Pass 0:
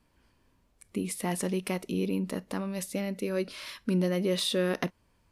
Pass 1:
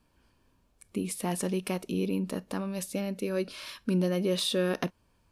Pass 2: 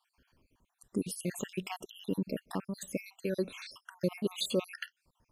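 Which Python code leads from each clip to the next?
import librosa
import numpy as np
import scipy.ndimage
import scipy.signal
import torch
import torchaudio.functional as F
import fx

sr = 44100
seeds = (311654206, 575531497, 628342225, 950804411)

y1 = fx.notch(x, sr, hz=2000.0, q=8.6)
y2 = fx.spec_dropout(y1, sr, seeds[0], share_pct=63)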